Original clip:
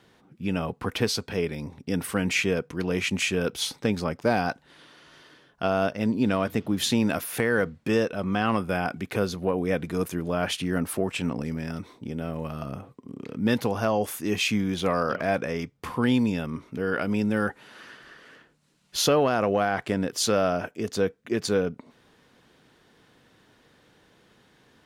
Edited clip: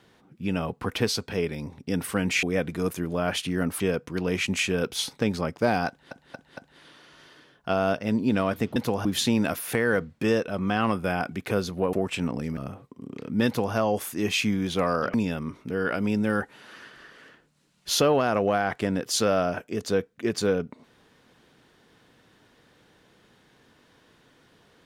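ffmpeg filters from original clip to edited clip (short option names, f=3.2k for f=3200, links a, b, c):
-filter_complex "[0:a]asplit=11[a][b][c][d][e][f][g][h][i][j][k];[a]atrim=end=2.432[l];[b]atrim=start=9.578:end=10.952[m];[c]atrim=start=2.428:end=4.742[n];[d]atrim=start=4.508:end=4.742[o];[e]atrim=start=4.508:end=4.742[p];[f]atrim=start=4.508:end=6.702[q];[g]atrim=start=13.528:end=13.822[r];[h]atrim=start=6.698:end=9.582[s];[i]atrim=start=10.948:end=11.592[t];[j]atrim=start=12.638:end=15.212[u];[k]atrim=start=16.208[v];[l][m]acrossfade=d=0.004:c1=hsin:c2=hsin[w];[w][n]acrossfade=d=0.004:c1=hsin:c2=hsin[x];[x][o]acrossfade=d=0.004:c1=hsin:c2=hsin[y];[y][p]acrossfade=d=0.004:c1=hsin:c2=hsin[z];[z][q]acrossfade=d=0.004:c1=hsin:c2=hsin[aa];[aa][r]acrossfade=d=0.004:c1=hsin:c2=hsin[ab];[ab][s]acrossfade=d=0.004:c1=hsin:c2=hsin[ac];[ac][t]acrossfade=d=0.004:c1=hsin:c2=hsin[ad];[ad][u]acrossfade=d=0.004:c1=hsin:c2=hsin[ae];[ae][v]acrossfade=d=0.004:c1=hsin:c2=hsin"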